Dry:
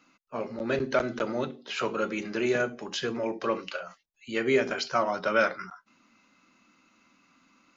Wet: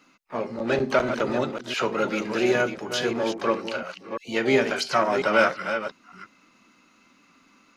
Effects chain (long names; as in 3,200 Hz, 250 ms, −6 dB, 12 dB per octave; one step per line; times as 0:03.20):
delay that plays each chunk backwards 348 ms, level −8 dB
pitch-shifted copies added +7 semitones −15 dB, +12 semitones −18 dB
level +4 dB